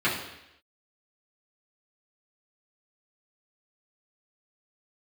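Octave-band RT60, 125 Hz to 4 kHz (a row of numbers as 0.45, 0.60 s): 0.75, 0.80, 0.85, 0.85, 0.90, 0.90 s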